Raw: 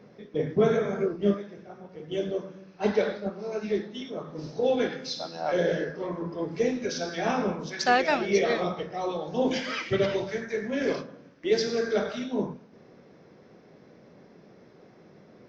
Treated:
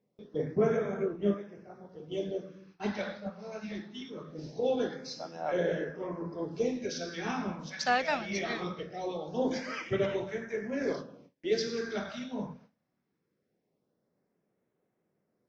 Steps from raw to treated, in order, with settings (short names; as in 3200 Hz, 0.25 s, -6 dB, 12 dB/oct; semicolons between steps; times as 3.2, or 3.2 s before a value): gate with hold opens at -40 dBFS; LFO notch sine 0.22 Hz 360–4800 Hz; gain -4.5 dB